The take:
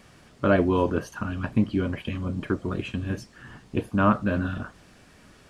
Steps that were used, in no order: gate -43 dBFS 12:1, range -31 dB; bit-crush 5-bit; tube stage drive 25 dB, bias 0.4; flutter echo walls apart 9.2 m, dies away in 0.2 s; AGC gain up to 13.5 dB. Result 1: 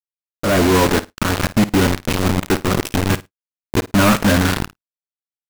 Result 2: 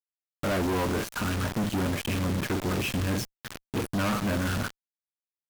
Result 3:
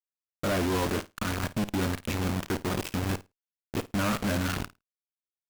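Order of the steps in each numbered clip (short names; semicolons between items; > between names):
tube stage > bit-crush > flutter echo > gate > AGC; flutter echo > gate > AGC > bit-crush > tube stage; bit-crush > AGC > tube stage > gate > flutter echo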